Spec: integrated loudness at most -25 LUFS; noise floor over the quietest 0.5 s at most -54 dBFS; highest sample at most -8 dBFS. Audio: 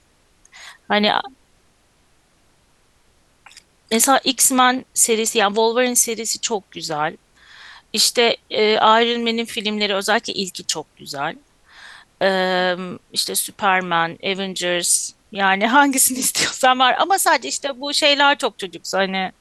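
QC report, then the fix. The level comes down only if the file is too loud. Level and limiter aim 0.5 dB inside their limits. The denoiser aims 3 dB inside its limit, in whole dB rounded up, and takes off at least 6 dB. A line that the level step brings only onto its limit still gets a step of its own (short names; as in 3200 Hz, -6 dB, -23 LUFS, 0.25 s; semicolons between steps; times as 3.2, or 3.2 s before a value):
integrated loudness -17.5 LUFS: fail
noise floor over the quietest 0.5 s -58 dBFS: OK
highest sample -2.5 dBFS: fail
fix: gain -8 dB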